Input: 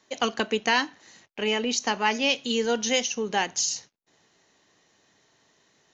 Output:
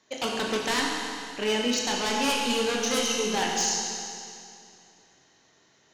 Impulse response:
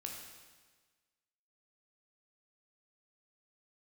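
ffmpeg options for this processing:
-filter_complex "[0:a]aeval=exprs='0.1*(abs(mod(val(0)/0.1+3,4)-2)-1)':c=same[a];[1:a]atrim=start_sample=2205,asetrate=25137,aresample=44100[b];[a][b]afir=irnorm=-1:irlink=0"

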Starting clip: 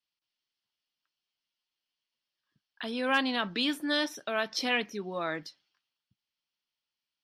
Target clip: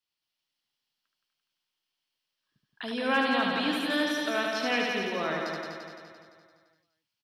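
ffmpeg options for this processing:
-filter_complex "[0:a]asplit=2[a][b];[b]aecho=0:1:74|271:0.631|0.266[c];[a][c]amix=inputs=2:normalize=0,acrossover=split=2600[d][e];[e]acompressor=threshold=-36dB:ratio=4:attack=1:release=60[f];[d][f]amix=inputs=2:normalize=0,asplit=2[g][h];[h]aecho=0:1:171|342|513|684|855|1026|1197|1368:0.631|0.366|0.212|0.123|0.0714|0.0414|0.024|0.0139[i];[g][i]amix=inputs=2:normalize=0"

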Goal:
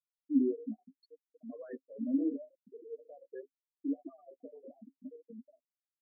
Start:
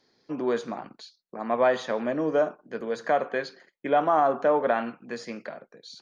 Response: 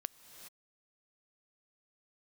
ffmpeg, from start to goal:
-filter_complex "[0:a]aeval=exprs='val(0)+0.5*0.0447*sgn(val(0))':c=same,asplit=2[a][b];[b]adelay=15,volume=-7.5dB[c];[a][c]amix=inputs=2:normalize=0,asettb=1/sr,asplit=3[d][e][f];[d]atrim=end=2.214[g];[e]atrim=start=2.21:end=4.8,asetpts=PTS-STARTPTS,afade=t=in:d=0.004:c=qsin,afade=t=out:st=2.586:d=0.004:c=qsin,acrossover=split=180|3000[h][i][j];[i]acompressor=threshold=-23dB:ratio=2.5[k];[h][k][j]amix=inputs=3:normalize=0[l];[f]atrim=start=4.796[m];[g][l]acrossfade=d=0.004:c1=hsin:c2=qsin[n];[n][m]acrossfade=d=0.004:c1=qsin:c2=hsin,asplit=2[o][p];[p]adelay=583.1,volume=-11dB,highshelf=f=4k:g=-13.1[q];[o][q]amix=inputs=2:normalize=0,dynaudnorm=f=130:g=3:m=4dB,afftfilt=real='re*gte(hypot(re,im),0.501)':imag='im*gte(hypot(re,im),0.501)':win_size=1024:overlap=0.75,asplit=3[r][s][t];[r]bandpass=f=270:t=q:w=8,volume=0dB[u];[s]bandpass=f=2.29k:t=q:w=8,volume=-6dB[v];[t]bandpass=f=3.01k:t=q:w=8,volume=-9dB[w];[u][v][w]amix=inputs=3:normalize=0,equalizer=f=1.3k:t=o:w=1.7:g=-5.5,flanger=delay=5.7:depth=8.6:regen=12:speed=0.77:shape=sinusoidal,adynamicequalizer=threshold=0.00316:dfrequency=390:dqfactor=1:tfrequency=390:tqfactor=1:attack=5:release=100:ratio=0.375:range=3.5:mode=boostabove:tftype=bell"

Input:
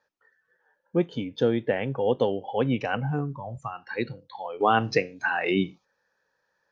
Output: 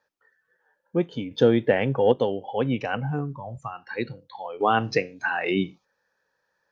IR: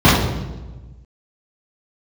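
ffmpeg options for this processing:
-filter_complex "[0:a]asettb=1/sr,asplit=3[a][b][c];[a]atrim=end=1.314[d];[b]atrim=start=1.31:end=2.12,asetpts=PTS-STARTPTS,afade=t=in:d=0.004:c=qsin,afade=t=out:st=0.806:d=0.004:c=qsin,acontrast=30[e];[c]atrim=start=2.116[f];[d][e]acrossfade=d=0.004:c1=hsin:c2=qsin[g];[g][f]acrossfade=d=0.004:c1=qsin:c2=hsin"

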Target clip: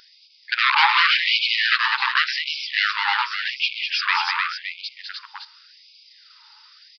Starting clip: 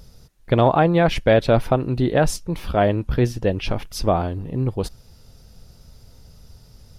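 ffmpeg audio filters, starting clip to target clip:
-filter_complex "[0:a]bandreject=f=50:t=h:w=6,bandreject=f=100:t=h:w=6,bandreject=f=150:t=h:w=6,bandreject=f=200:t=h:w=6,bandreject=f=250:t=h:w=6,aeval=exprs='0.15*(abs(mod(val(0)/0.15+3,4)-2)-1)':c=same,asplit=2[a][b];[b]aecho=0:1:203|304|565:0.562|0.668|0.398[c];[a][c]amix=inputs=2:normalize=0,aresample=11025,aresample=44100,afftfilt=real='re*gte(b*sr/1024,800*pow(2200/800,0.5+0.5*sin(2*PI*0.88*pts/sr)))':imag='im*gte(b*sr/1024,800*pow(2200/800,0.5+0.5*sin(2*PI*0.88*pts/sr)))':win_size=1024:overlap=0.75,volume=9dB"

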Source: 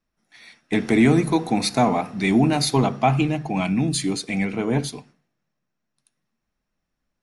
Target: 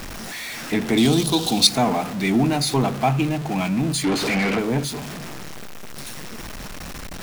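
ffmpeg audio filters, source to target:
-filter_complex "[0:a]aeval=exprs='val(0)+0.5*0.0596*sgn(val(0))':c=same,asettb=1/sr,asplit=3[a][b][c];[a]atrim=end=0.974[d];[b]atrim=start=0.97:end=1.67,asetpts=PTS-STARTPTS,afade=t=in:d=0.004:c=qsin,afade=t=out:st=0.696:d=0.004:c=qsin,highshelf=f=2.7k:t=q:w=3:g=8.5[e];[c]atrim=start=1.666[f];[d][e]acrossfade=d=0.004:c1=hsin:c2=qsin[g];[g][f]acrossfade=d=0.004:c1=qsin:c2=hsin,asplit=3[h][i][j];[h]afade=t=out:st=4.03:d=0.02[k];[i]asplit=2[l][m];[m]highpass=f=720:p=1,volume=29dB,asoftclip=type=tanh:threshold=-11dB[n];[l][n]amix=inputs=2:normalize=0,lowpass=f=2.2k:p=1,volume=-6dB,afade=t=in:st=4.03:d=0.02,afade=t=out:st=4.58:d=0.02[o];[j]afade=t=in:st=4.58:d=0.02[p];[k][o][p]amix=inputs=3:normalize=0,volume=-2.5dB"

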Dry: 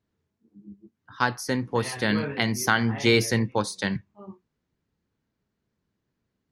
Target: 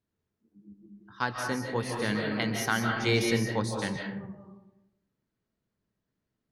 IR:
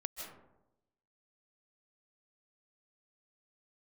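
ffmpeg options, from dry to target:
-filter_complex "[1:a]atrim=start_sample=2205[a];[0:a][a]afir=irnorm=-1:irlink=0,volume=-3.5dB"

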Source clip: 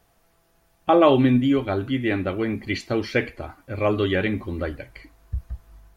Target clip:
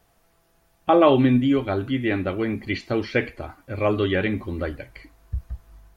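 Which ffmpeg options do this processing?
-filter_complex "[0:a]acrossover=split=4800[a][b];[b]acompressor=threshold=-54dB:ratio=4:attack=1:release=60[c];[a][c]amix=inputs=2:normalize=0"

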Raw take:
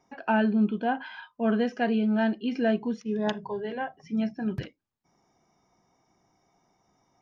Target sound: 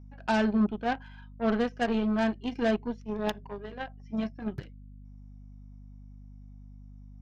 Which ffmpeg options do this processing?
-af "aeval=exprs='0.211*(cos(1*acos(clip(val(0)/0.211,-1,1)))-cos(1*PI/2))+0.0168*(cos(5*acos(clip(val(0)/0.211,-1,1)))-cos(5*PI/2))+0.0335*(cos(7*acos(clip(val(0)/0.211,-1,1)))-cos(7*PI/2))':c=same,aeval=exprs='val(0)+0.00631*(sin(2*PI*50*n/s)+sin(2*PI*2*50*n/s)/2+sin(2*PI*3*50*n/s)/3+sin(2*PI*4*50*n/s)/4+sin(2*PI*5*50*n/s)/5)':c=same,volume=-2.5dB"

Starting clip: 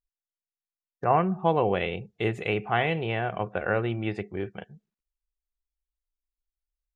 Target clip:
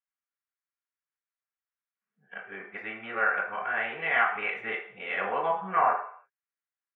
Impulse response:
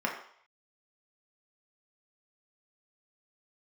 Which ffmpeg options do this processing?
-filter_complex "[0:a]areverse,bandpass=f=1.6k:t=q:w=1.6:csg=0[a];[1:a]atrim=start_sample=2205,asetrate=48510,aresample=44100[b];[a][b]afir=irnorm=-1:irlink=0,volume=-1.5dB"

